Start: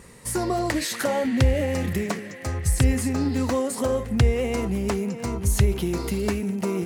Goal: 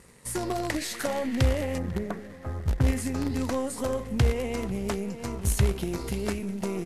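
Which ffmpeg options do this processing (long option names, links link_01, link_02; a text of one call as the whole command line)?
ffmpeg -i in.wav -filter_complex "[0:a]asettb=1/sr,asplit=3[link_01][link_02][link_03];[link_01]atrim=end=1.784[link_04];[link_02]atrim=start=1.78:end=2.87,asetpts=PTS-STARTPTS,afade=type=in:duration=0.004:curve=qsin,afade=type=out:start_time=1.086:duration=0.004:curve=qsin,lowpass=frequency=1600:width=0.5412,lowpass=frequency=1600:width=1.3066[link_05];[link_03]atrim=start=2.866[link_06];[link_04][link_05]acrossfade=duration=0.004:curve1=hsin:curve2=qsin[link_07];[link_07][link_06]acrossfade=duration=0.004:curve1=qsin:curve2=hsin,asplit=2[link_08][link_09];[link_09]acrusher=bits=4:dc=4:mix=0:aa=0.000001,volume=-4.5dB[link_10];[link_08][link_10]amix=inputs=2:normalize=0,asplit=2[link_11][link_12];[link_12]adelay=495.6,volume=-19dB,highshelf=frequency=4000:gain=-11.2[link_13];[link_11][link_13]amix=inputs=2:normalize=0,volume=-8dB" -ar 32000 -c:a libvorbis -b:a 48k out.ogg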